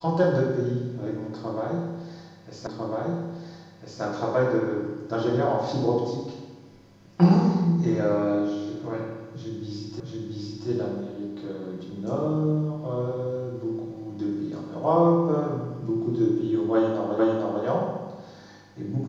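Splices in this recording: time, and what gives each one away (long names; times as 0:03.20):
0:02.67: the same again, the last 1.35 s
0:10.00: the same again, the last 0.68 s
0:17.19: the same again, the last 0.45 s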